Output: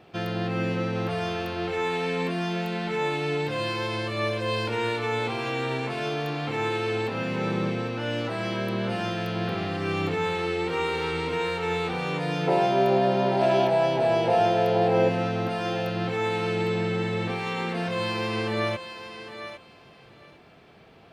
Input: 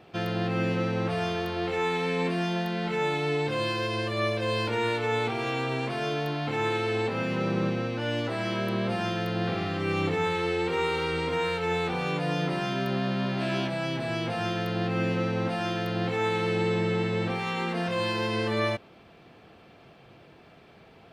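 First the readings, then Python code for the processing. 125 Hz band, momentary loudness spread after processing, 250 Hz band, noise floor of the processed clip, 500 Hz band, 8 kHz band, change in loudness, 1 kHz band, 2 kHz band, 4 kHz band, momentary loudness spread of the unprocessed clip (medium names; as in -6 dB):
0.0 dB, 7 LU, +0.5 dB, -52 dBFS, +3.5 dB, no reading, +2.0 dB, +3.5 dB, +0.5 dB, +0.5 dB, 3 LU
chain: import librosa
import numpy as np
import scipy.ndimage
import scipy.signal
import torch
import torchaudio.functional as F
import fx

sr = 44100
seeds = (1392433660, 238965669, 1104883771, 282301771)

y = fx.spec_box(x, sr, start_s=12.48, length_s=2.61, low_hz=360.0, high_hz=1000.0, gain_db=12)
y = fx.echo_thinned(y, sr, ms=806, feedback_pct=18, hz=610.0, wet_db=-8.5)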